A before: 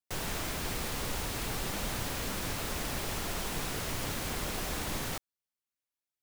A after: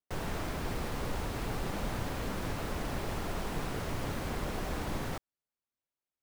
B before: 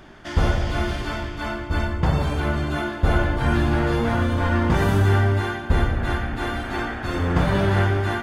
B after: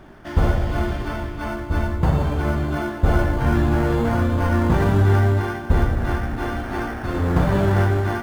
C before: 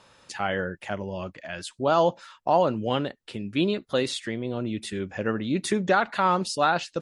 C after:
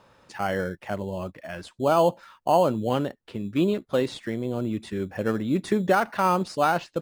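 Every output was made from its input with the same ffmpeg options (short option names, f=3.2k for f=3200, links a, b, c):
-filter_complex "[0:a]highshelf=f=2.9k:g=-11.5,asplit=2[a][b];[b]acrusher=samples=12:mix=1:aa=0.000001,volume=-12dB[c];[a][c]amix=inputs=2:normalize=0"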